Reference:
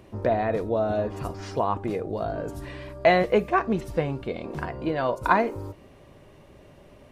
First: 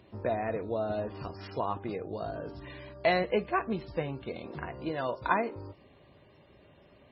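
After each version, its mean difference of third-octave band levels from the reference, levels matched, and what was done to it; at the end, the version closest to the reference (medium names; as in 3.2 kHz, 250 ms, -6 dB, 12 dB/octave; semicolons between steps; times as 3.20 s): 2.5 dB: high-pass 56 Hz 12 dB/octave; treble shelf 4.9 kHz +11.5 dB; trim -7 dB; MP3 16 kbps 22.05 kHz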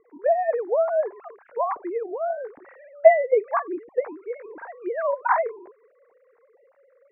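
15.0 dB: formants replaced by sine waves; steep low-pass 2.1 kHz 48 dB/octave; dynamic bell 970 Hz, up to +4 dB, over -31 dBFS, Q 0.72; trim -1 dB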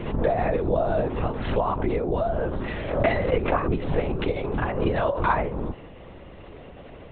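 7.0 dB: compression 5:1, threshold -28 dBFS, peak gain reduction 13.5 dB; LPC vocoder at 8 kHz whisper; swell ahead of each attack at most 64 dB/s; trim +7.5 dB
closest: first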